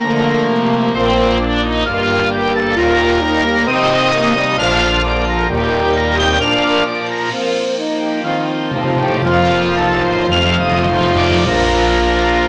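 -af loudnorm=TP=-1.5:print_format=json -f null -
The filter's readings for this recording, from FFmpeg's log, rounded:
"input_i" : "-14.5",
"input_tp" : "-2.0",
"input_lra" : "2.4",
"input_thresh" : "-24.5",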